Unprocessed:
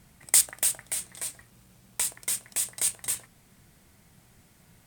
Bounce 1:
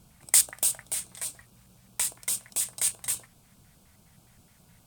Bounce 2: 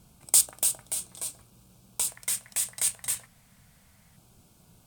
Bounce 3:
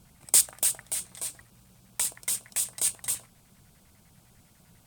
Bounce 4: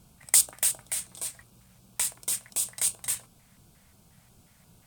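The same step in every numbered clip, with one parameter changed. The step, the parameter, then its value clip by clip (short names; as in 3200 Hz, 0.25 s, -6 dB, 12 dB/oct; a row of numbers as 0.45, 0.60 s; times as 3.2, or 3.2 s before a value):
LFO notch, rate: 4.8, 0.24, 10, 2.8 Hz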